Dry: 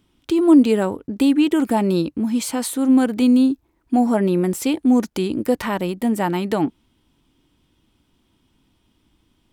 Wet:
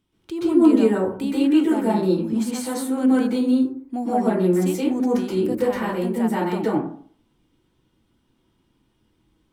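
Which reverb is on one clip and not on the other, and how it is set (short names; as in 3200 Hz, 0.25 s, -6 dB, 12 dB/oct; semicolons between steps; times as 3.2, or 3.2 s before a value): plate-style reverb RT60 0.51 s, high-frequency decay 0.4×, pre-delay 0.115 s, DRR -8 dB; gain -11 dB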